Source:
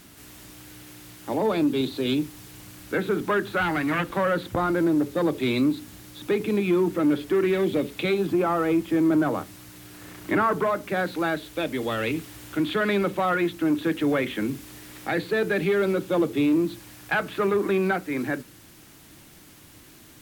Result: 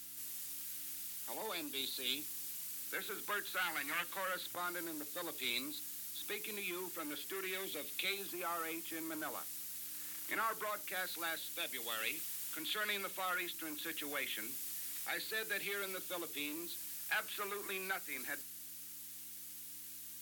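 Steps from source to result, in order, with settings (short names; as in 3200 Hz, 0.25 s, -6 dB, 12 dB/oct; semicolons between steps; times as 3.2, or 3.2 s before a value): buzz 100 Hz, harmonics 3, -40 dBFS -4 dB/oct; differentiator; gain +1.5 dB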